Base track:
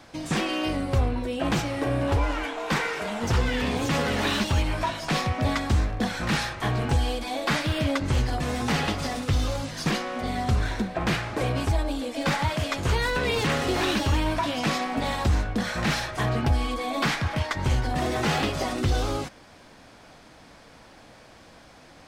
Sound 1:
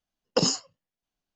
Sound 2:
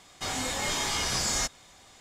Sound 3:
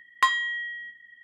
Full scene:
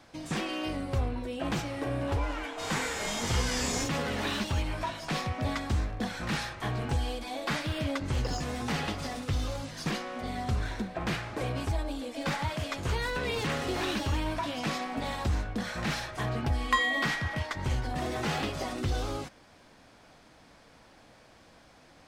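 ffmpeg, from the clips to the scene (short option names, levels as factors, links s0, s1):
-filter_complex "[0:a]volume=0.473[s0];[2:a]asplit=2[s1][s2];[s2]adelay=43,volume=0.708[s3];[s1][s3]amix=inputs=2:normalize=0[s4];[1:a]adynamicsmooth=sensitivity=8:basefreq=5700[s5];[3:a]alimiter=limit=0.237:level=0:latency=1:release=71[s6];[s4]atrim=end=2,asetpts=PTS-STARTPTS,volume=0.422,afade=t=in:d=0.004:c=hsin,afade=t=out:st=1.996:d=0.004:c=hsin,adelay=2370[s7];[s5]atrim=end=1.35,asetpts=PTS-STARTPTS,volume=0.178,afade=t=in:d=0.004:c=hsin,afade=t=out:st=1.346:d=0.004:c=hsin,adelay=7880[s8];[s6]atrim=end=1.23,asetpts=PTS-STARTPTS,volume=0.841,afade=t=in:d=0.004:c=hsin,afade=t=out:st=1.226:d=0.004:c=hsin,adelay=16500[s9];[s0][s7][s8][s9]amix=inputs=4:normalize=0"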